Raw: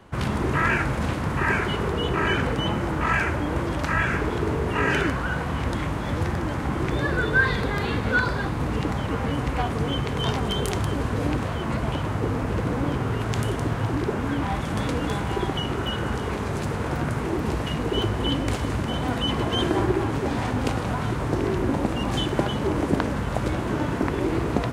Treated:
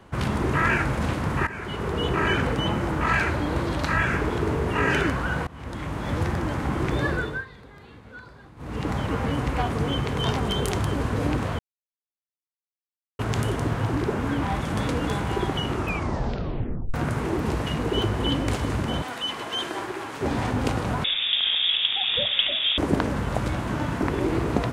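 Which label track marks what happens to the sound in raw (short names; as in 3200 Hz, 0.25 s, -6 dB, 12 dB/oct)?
1.470000	2.030000	fade in, from -18 dB
3.080000	3.970000	bell 4100 Hz +7.5 dB 0.36 oct
5.470000	6.150000	fade in, from -22.5 dB
7.070000	8.940000	dip -21.5 dB, fades 0.38 s
11.590000	13.190000	mute
15.710000	15.710000	tape stop 1.23 s
19.020000	20.210000	HPF 1200 Hz 6 dB/oct
21.040000	22.780000	inverted band carrier 3600 Hz
23.430000	24.020000	bell 400 Hz -7 dB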